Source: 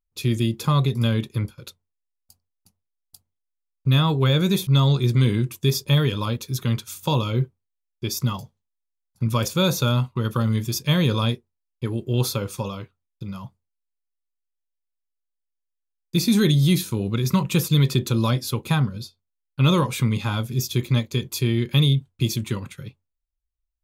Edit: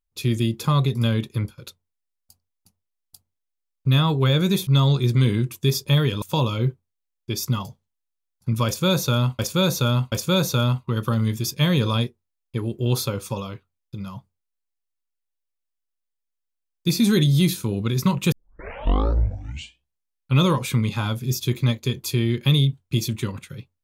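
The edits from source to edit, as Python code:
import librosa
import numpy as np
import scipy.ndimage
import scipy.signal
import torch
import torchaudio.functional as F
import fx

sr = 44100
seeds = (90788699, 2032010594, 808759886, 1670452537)

y = fx.edit(x, sr, fx.cut(start_s=6.22, length_s=0.74),
    fx.repeat(start_s=9.4, length_s=0.73, count=3),
    fx.tape_start(start_s=17.6, length_s=2.07), tone=tone)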